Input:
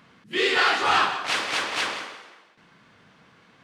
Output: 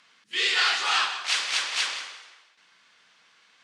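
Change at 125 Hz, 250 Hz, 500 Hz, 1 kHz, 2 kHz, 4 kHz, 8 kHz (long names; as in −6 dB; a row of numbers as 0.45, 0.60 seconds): below −20 dB, below −15 dB, −14.0 dB, −6.5 dB, −2.0 dB, +2.0 dB, +4.5 dB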